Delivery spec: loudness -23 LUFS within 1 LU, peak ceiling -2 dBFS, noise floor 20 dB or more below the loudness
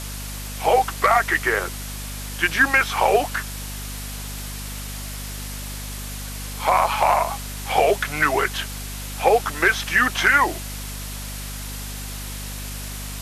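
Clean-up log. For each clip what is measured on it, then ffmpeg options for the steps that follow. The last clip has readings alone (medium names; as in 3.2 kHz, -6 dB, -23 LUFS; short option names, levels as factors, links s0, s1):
hum 50 Hz; highest harmonic 250 Hz; hum level -31 dBFS; noise floor -32 dBFS; noise floor target -43 dBFS; loudness -22.5 LUFS; peak level -6.5 dBFS; loudness target -23.0 LUFS
-> -af "bandreject=f=50:t=h:w=6,bandreject=f=100:t=h:w=6,bandreject=f=150:t=h:w=6,bandreject=f=200:t=h:w=6,bandreject=f=250:t=h:w=6"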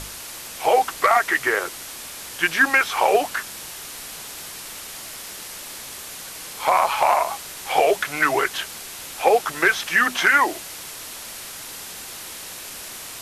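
hum not found; noise floor -37 dBFS; noise floor target -40 dBFS
-> -af "afftdn=nr=6:nf=-37"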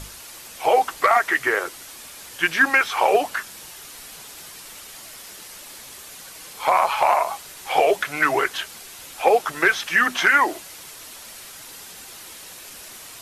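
noise floor -41 dBFS; loudness -20.0 LUFS; peak level -6.5 dBFS; loudness target -23.0 LUFS
-> -af "volume=0.708"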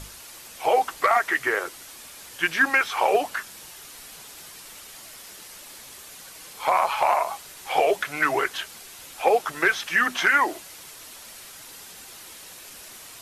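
loudness -23.0 LUFS; peak level -9.5 dBFS; noise floor -44 dBFS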